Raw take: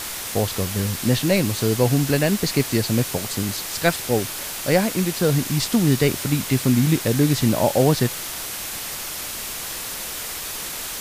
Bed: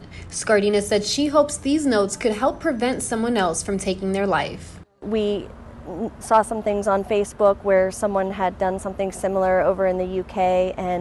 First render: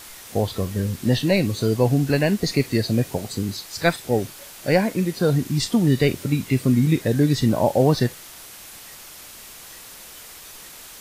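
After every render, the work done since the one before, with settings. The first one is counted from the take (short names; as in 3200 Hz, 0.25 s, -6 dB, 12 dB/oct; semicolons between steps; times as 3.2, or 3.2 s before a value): noise print and reduce 11 dB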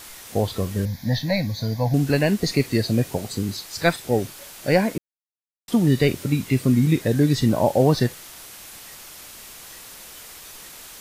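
0.85–1.94 fixed phaser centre 1900 Hz, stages 8; 4.98–5.68 mute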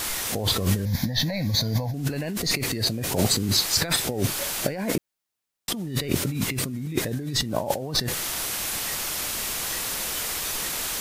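in parallel at -2 dB: limiter -16.5 dBFS, peak gain reduction 10.5 dB; on the sum: negative-ratio compressor -26 dBFS, ratio -1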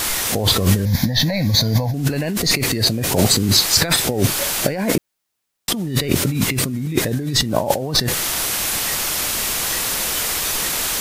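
gain +7.5 dB; limiter -3 dBFS, peak gain reduction 2.5 dB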